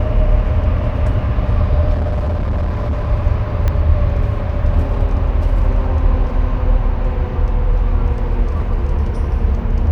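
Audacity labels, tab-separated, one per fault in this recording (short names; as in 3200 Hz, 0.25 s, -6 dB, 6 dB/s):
1.930000	3.090000	clipped -14.5 dBFS
3.680000	3.680000	pop -7 dBFS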